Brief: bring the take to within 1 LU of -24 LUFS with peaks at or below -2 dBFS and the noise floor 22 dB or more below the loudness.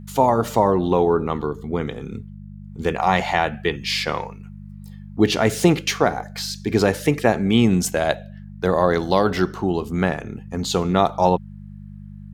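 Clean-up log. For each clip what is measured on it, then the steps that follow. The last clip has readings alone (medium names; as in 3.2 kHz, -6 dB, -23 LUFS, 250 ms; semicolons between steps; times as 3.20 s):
hum 50 Hz; highest harmonic 200 Hz; hum level -35 dBFS; loudness -21.0 LUFS; peak level -2.5 dBFS; loudness target -24.0 LUFS
-> de-hum 50 Hz, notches 4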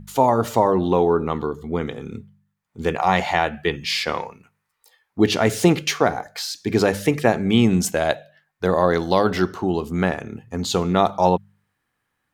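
hum not found; loudness -21.0 LUFS; peak level -3.0 dBFS; loudness target -24.0 LUFS
-> trim -3 dB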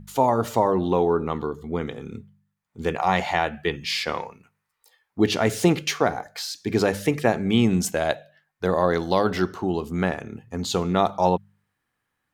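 loudness -24.0 LUFS; peak level -6.0 dBFS; noise floor -79 dBFS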